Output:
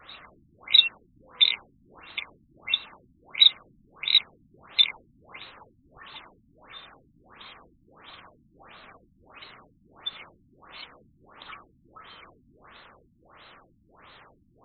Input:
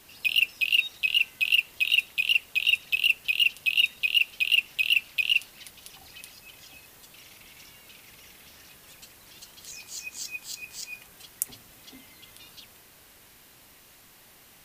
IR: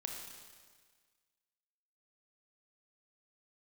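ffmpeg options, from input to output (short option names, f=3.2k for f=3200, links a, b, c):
-af "afftfilt=real='real(if(lt(b,960),b+48*(1-2*mod(floor(b/48),2)),b),0)':imag='imag(if(lt(b,960),b+48*(1-2*mod(floor(b/48),2)),b),0)':win_size=2048:overlap=0.75,acrusher=bits=8:mode=log:mix=0:aa=0.000001,afftfilt=real='re*lt(b*sr/1024,290*pow(4400/290,0.5+0.5*sin(2*PI*1.5*pts/sr)))':imag='im*lt(b*sr/1024,290*pow(4400/290,0.5+0.5*sin(2*PI*1.5*pts/sr)))':win_size=1024:overlap=0.75,volume=7dB"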